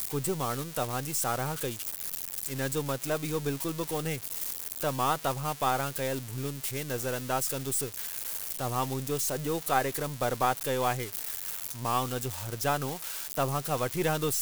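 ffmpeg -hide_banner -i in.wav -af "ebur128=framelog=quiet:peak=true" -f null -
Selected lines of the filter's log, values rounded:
Integrated loudness:
  I:         -30.9 LUFS
  Threshold: -40.9 LUFS
Loudness range:
  LRA:         1.7 LU
  Threshold: -50.9 LUFS
  LRA low:   -31.7 LUFS
  LRA high:  -30.0 LUFS
True peak:
  Peak:      -11.8 dBFS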